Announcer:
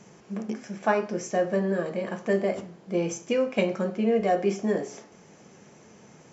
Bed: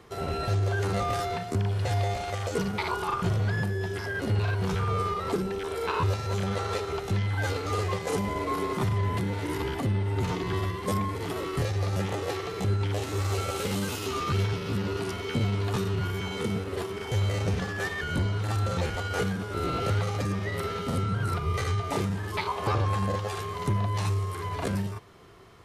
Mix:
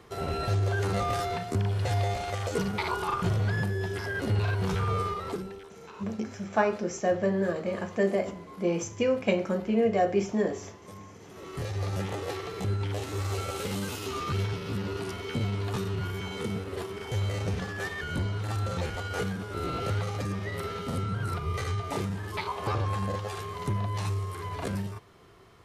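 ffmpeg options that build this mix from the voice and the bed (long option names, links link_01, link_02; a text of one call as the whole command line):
ffmpeg -i stem1.wav -i stem2.wav -filter_complex "[0:a]adelay=5700,volume=-1dB[link_01];[1:a]volume=15dB,afade=type=out:start_time=4.92:duration=0.8:silence=0.125893,afade=type=in:start_time=11.31:duration=0.5:silence=0.16788[link_02];[link_01][link_02]amix=inputs=2:normalize=0" out.wav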